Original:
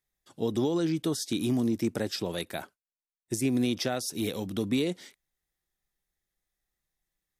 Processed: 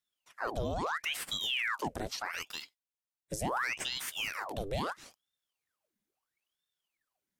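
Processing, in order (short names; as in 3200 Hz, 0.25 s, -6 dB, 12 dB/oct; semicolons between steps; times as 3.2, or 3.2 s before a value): in parallel at +3 dB: limiter -26 dBFS, peak gain reduction 9.5 dB; on the sum: ring modulator with a swept carrier 1900 Hz, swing 90%, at 0.75 Hz; gain -8.5 dB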